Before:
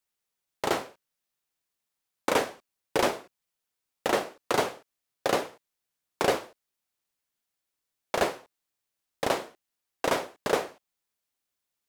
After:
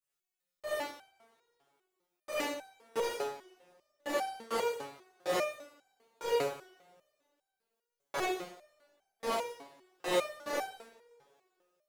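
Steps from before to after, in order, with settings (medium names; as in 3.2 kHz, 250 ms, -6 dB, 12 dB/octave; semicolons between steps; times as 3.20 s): two-slope reverb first 0.59 s, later 2.4 s, from -26 dB, DRR -7.5 dB; resonator arpeggio 5 Hz 140–770 Hz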